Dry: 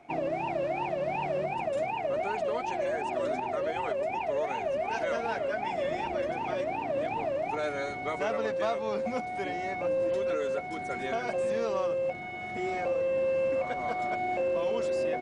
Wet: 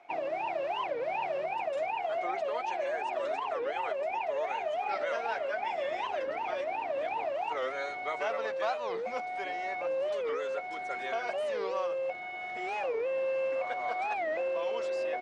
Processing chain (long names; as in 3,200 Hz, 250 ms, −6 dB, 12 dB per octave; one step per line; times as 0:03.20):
three-way crossover with the lows and the highs turned down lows −19 dB, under 460 Hz, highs −12 dB, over 5,900 Hz
wow of a warped record 45 rpm, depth 250 cents